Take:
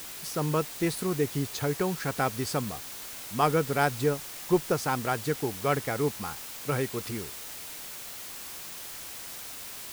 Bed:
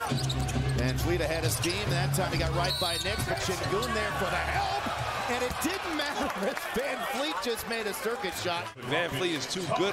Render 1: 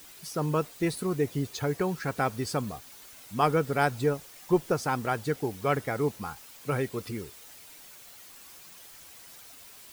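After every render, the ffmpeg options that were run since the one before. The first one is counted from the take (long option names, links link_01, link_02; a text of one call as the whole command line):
ffmpeg -i in.wav -af "afftdn=noise_reduction=10:noise_floor=-41" out.wav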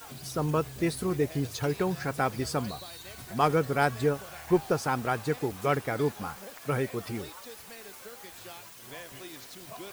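ffmpeg -i in.wav -i bed.wav -filter_complex "[1:a]volume=-16dB[link_01];[0:a][link_01]amix=inputs=2:normalize=0" out.wav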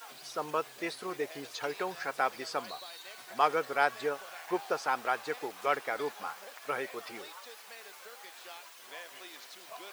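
ffmpeg -i in.wav -filter_complex "[0:a]highpass=600,acrossover=split=5500[link_01][link_02];[link_02]acompressor=threshold=-53dB:ratio=4:attack=1:release=60[link_03];[link_01][link_03]amix=inputs=2:normalize=0" out.wav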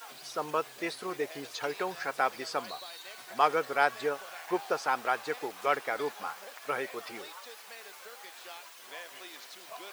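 ffmpeg -i in.wav -af "volume=1.5dB" out.wav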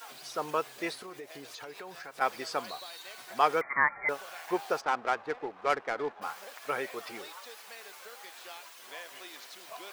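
ffmpeg -i in.wav -filter_complex "[0:a]asplit=3[link_01][link_02][link_03];[link_01]afade=type=out:start_time=0.97:duration=0.02[link_04];[link_02]acompressor=threshold=-42dB:ratio=4:attack=3.2:release=140:knee=1:detection=peak,afade=type=in:start_time=0.97:duration=0.02,afade=type=out:start_time=2.2:duration=0.02[link_05];[link_03]afade=type=in:start_time=2.2:duration=0.02[link_06];[link_04][link_05][link_06]amix=inputs=3:normalize=0,asettb=1/sr,asplit=3[link_07][link_08][link_09];[link_07]atrim=end=3.614[link_10];[link_08]atrim=start=3.61:end=4.09,asetpts=PTS-STARTPTS,afade=type=in:duration=0.004:curve=qsin,afade=type=out:start_time=0.476:duration=0.004:curve=qsin,lowpass=frequency=2100:width_type=q:width=0.5098,lowpass=frequency=2100:width_type=q:width=0.6013,lowpass=frequency=2100:width_type=q:width=0.9,lowpass=frequency=2100:width_type=q:width=2.563,afreqshift=-2500[link_11];[link_09]atrim=start=4.086[link_12];[link_10][link_11]acrossfade=duration=0.004:curve1=hsin:curve2=qsin[link_13];[link_13][link_12]acrossfade=duration=0.004:curve1=qsin:curve2=hsin,asplit=3[link_14][link_15][link_16];[link_14]afade=type=out:start_time=4.8:duration=0.02[link_17];[link_15]adynamicsmooth=sensitivity=3.5:basefreq=1200,afade=type=in:start_time=4.8:duration=0.02,afade=type=out:start_time=6.21:duration=0.02[link_18];[link_16]afade=type=in:start_time=6.21:duration=0.02[link_19];[link_17][link_18][link_19]amix=inputs=3:normalize=0" out.wav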